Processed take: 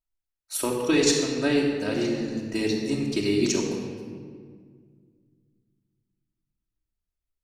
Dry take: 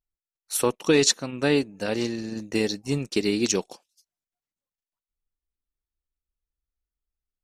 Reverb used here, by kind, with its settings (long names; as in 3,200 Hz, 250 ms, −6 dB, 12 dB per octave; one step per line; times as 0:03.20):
rectangular room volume 3,000 cubic metres, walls mixed, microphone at 2.8 metres
level −5 dB